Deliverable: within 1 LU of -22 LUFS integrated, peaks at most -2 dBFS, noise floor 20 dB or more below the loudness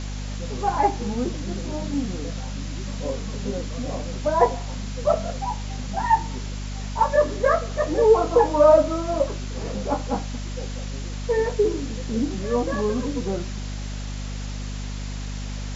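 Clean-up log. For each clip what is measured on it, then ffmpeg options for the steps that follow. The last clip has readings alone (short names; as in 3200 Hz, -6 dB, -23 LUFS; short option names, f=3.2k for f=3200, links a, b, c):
hum 50 Hz; harmonics up to 250 Hz; hum level -28 dBFS; noise floor -31 dBFS; noise floor target -45 dBFS; loudness -24.5 LUFS; peak -4.0 dBFS; loudness target -22.0 LUFS
-> -af "bandreject=f=50:t=h:w=4,bandreject=f=100:t=h:w=4,bandreject=f=150:t=h:w=4,bandreject=f=200:t=h:w=4,bandreject=f=250:t=h:w=4"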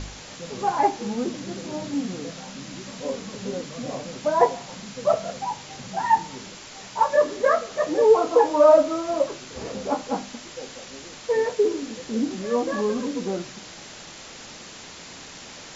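hum none; noise floor -42 dBFS; noise floor target -44 dBFS
-> -af "afftdn=nr=6:nf=-42"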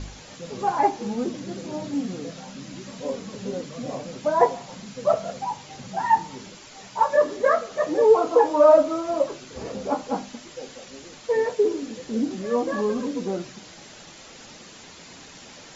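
noise floor -45 dBFS; loudness -23.5 LUFS; peak -4.0 dBFS; loudness target -22.0 LUFS
-> -af "volume=1.5dB"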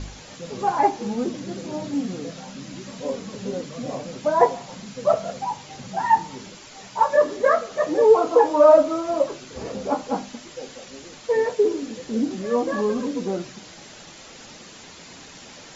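loudness -22.0 LUFS; peak -2.5 dBFS; noise floor -44 dBFS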